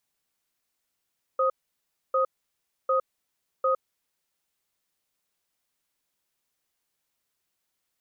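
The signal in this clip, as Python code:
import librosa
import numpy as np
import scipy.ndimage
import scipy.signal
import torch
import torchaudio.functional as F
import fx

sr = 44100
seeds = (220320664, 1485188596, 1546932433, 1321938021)

y = fx.cadence(sr, length_s=2.62, low_hz=527.0, high_hz=1250.0, on_s=0.11, off_s=0.64, level_db=-23.0)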